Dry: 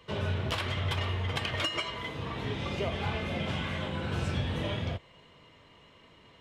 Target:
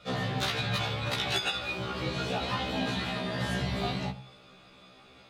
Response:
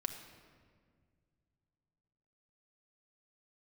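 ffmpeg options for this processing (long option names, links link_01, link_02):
-filter_complex "[0:a]bandreject=frequency=54.05:width_type=h:width=4,bandreject=frequency=108.1:width_type=h:width=4,bandreject=frequency=162.15:width_type=h:width=4,asetrate=53361,aresample=44100,asplit=2[link_01][link_02];[1:a]atrim=start_sample=2205,atrim=end_sample=6174[link_03];[link_02][link_03]afir=irnorm=-1:irlink=0,volume=-2dB[link_04];[link_01][link_04]amix=inputs=2:normalize=0,afftfilt=real='re*1.73*eq(mod(b,3),0)':imag='im*1.73*eq(mod(b,3),0)':win_size=2048:overlap=0.75"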